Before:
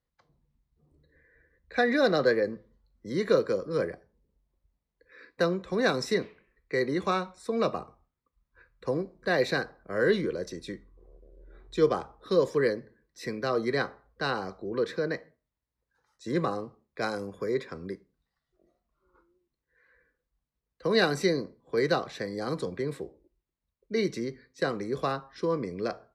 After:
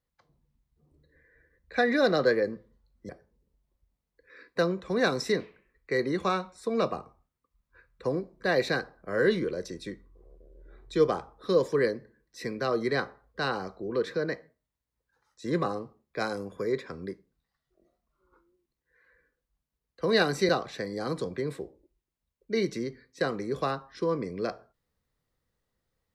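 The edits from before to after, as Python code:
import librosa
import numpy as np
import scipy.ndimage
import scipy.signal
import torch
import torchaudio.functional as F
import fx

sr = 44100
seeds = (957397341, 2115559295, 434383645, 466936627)

y = fx.edit(x, sr, fx.cut(start_s=3.09, length_s=0.82),
    fx.cut(start_s=21.31, length_s=0.59), tone=tone)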